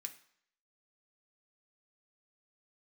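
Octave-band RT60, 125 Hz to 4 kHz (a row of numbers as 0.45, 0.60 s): 0.55, 0.60, 0.60, 0.65, 0.65, 0.65 s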